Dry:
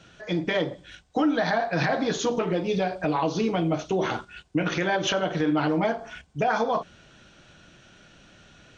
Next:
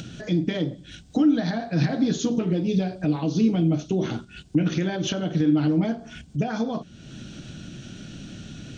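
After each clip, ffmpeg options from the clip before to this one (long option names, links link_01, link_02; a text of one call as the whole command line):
ffmpeg -i in.wav -af "equalizer=frequency=125:width_type=o:width=1:gain=6,equalizer=frequency=250:width_type=o:width=1:gain=8,equalizer=frequency=500:width_type=o:width=1:gain=-5,equalizer=frequency=1000:width_type=o:width=1:gain=-11,equalizer=frequency=2000:width_type=o:width=1:gain=-6,acompressor=mode=upward:threshold=-27dB:ratio=2.5" out.wav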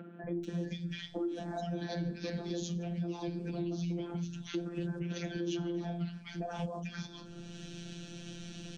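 ffmpeg -i in.wav -filter_complex "[0:a]afftfilt=real='hypot(re,im)*cos(PI*b)':imag='0':win_size=1024:overlap=0.75,acrossover=split=210|1500[link_01][link_02][link_03];[link_01]adelay=240[link_04];[link_03]adelay=440[link_05];[link_04][link_02][link_05]amix=inputs=3:normalize=0,acompressor=threshold=-36dB:ratio=3" out.wav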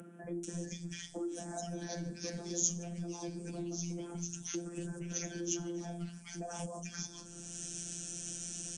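ffmpeg -i in.wav -filter_complex "[0:a]acrossover=split=160[link_01][link_02];[link_01]aeval=exprs='clip(val(0),-1,0.00178)':channel_layout=same[link_03];[link_02]aexciter=amount=16:drive=7.4:freq=6200[link_04];[link_03][link_04]amix=inputs=2:normalize=0,aresample=22050,aresample=44100,volume=-3.5dB" out.wav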